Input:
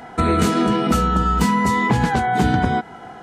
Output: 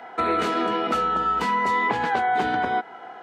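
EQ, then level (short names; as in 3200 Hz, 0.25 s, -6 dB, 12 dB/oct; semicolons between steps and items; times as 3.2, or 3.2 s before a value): HPF 50 Hz; three-band isolator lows -21 dB, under 340 Hz, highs -16 dB, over 4100 Hz; -1.5 dB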